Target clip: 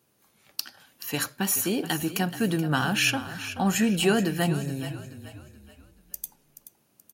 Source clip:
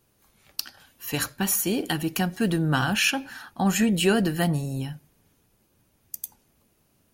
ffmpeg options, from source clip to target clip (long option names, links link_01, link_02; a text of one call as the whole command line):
ffmpeg -i in.wav -filter_complex "[0:a]highpass=130,asplit=2[link_01][link_02];[link_02]asplit=4[link_03][link_04][link_05][link_06];[link_03]adelay=428,afreqshift=-30,volume=-12.5dB[link_07];[link_04]adelay=856,afreqshift=-60,volume=-20.2dB[link_08];[link_05]adelay=1284,afreqshift=-90,volume=-28dB[link_09];[link_06]adelay=1712,afreqshift=-120,volume=-35.7dB[link_10];[link_07][link_08][link_09][link_10]amix=inputs=4:normalize=0[link_11];[link_01][link_11]amix=inputs=2:normalize=0,volume=-1dB" out.wav